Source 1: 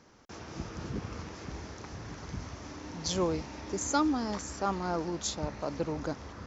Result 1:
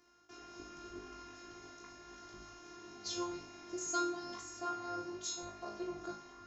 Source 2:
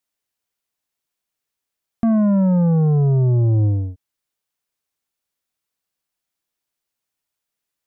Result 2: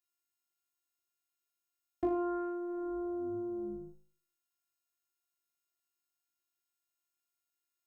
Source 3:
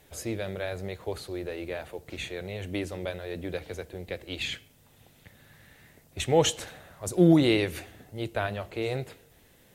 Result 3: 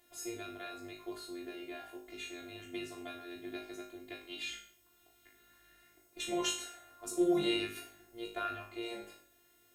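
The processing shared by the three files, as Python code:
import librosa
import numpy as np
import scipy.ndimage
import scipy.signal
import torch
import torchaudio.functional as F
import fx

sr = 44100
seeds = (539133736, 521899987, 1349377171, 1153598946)

p1 = fx.robotise(x, sr, hz=350.0)
p2 = fx.highpass(p1, sr, hz=86.0, slope=6)
p3 = p2 + fx.room_flutter(p2, sr, wall_m=3.3, rt60_s=0.48, dry=0)
y = F.gain(torch.from_numpy(p3), -7.0).numpy()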